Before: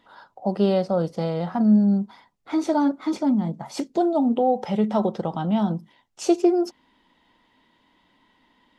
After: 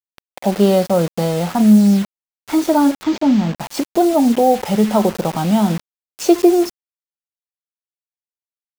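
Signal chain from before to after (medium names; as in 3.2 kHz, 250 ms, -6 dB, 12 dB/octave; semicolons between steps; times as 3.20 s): bit crusher 6-bit; 3.03–3.57 s: decimation joined by straight lines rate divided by 4×; trim +7 dB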